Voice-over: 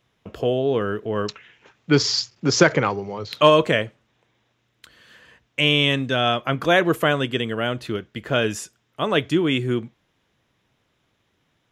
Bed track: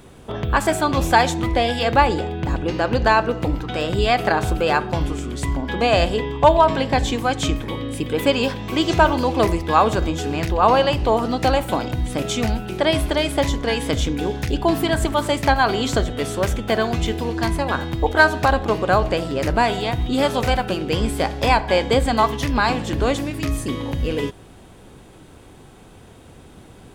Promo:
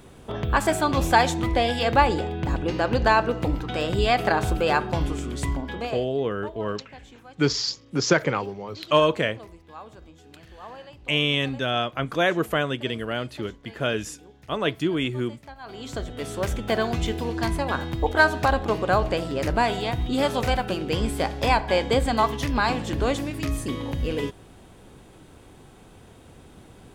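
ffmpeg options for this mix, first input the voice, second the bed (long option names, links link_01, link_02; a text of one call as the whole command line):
ffmpeg -i stem1.wav -i stem2.wav -filter_complex "[0:a]adelay=5500,volume=-4.5dB[link_01];[1:a]volume=19.5dB,afade=type=out:start_time=5.46:duration=0.55:silence=0.0668344,afade=type=in:start_time=15.6:duration=1.05:silence=0.0749894[link_02];[link_01][link_02]amix=inputs=2:normalize=0" out.wav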